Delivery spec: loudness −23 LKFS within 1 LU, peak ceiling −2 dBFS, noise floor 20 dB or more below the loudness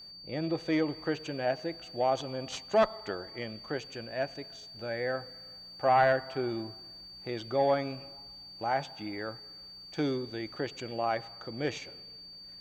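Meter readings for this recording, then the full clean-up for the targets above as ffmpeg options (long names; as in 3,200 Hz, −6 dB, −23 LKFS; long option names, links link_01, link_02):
interfering tone 4,600 Hz; level of the tone −46 dBFS; integrated loudness −32.5 LKFS; sample peak −12.5 dBFS; target loudness −23.0 LKFS
→ -af "bandreject=frequency=4600:width=30"
-af "volume=9.5dB"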